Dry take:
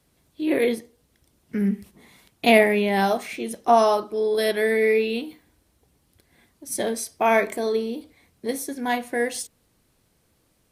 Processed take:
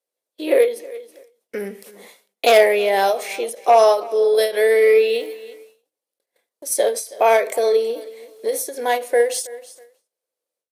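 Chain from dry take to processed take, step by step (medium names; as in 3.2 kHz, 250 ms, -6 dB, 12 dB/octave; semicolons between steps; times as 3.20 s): sine folder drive 5 dB, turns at -2.5 dBFS; on a send: feedback delay 323 ms, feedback 24%, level -21.5 dB; 4.84–5.27 s: on the sum: small samples zeroed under -40 dBFS; resonant high-pass 510 Hz, resonance Q 4.9; treble shelf 2.8 kHz +8.5 dB; in parallel at -2 dB: compression, threshold -24 dBFS, peak gain reduction 23.5 dB; on the sum: gate -39 dBFS, range -29 dB; endings held to a fixed fall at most 150 dB/s; trim -10 dB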